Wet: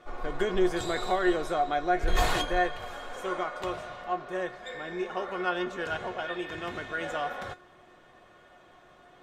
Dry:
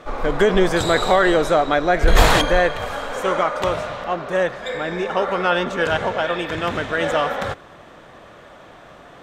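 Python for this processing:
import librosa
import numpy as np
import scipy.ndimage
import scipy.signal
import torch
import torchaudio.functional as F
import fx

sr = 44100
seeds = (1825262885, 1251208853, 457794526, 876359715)

y = fx.comb_fb(x, sr, f0_hz=360.0, decay_s=0.15, harmonics='all', damping=0.0, mix_pct=80)
y = y * 10.0 ** (-3.0 / 20.0)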